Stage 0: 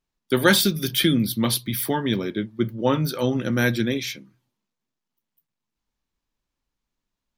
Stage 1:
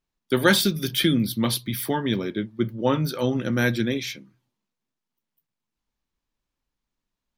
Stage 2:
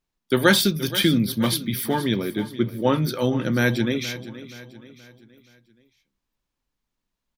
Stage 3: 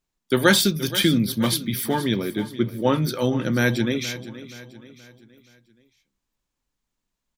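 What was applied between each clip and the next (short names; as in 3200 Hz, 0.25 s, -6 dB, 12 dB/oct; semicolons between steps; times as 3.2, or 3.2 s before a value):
high shelf 8100 Hz -4 dB; gain -1 dB
feedback echo 0.475 s, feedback 43%, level -15 dB; gain +1.5 dB
bell 7300 Hz +5 dB 0.55 oct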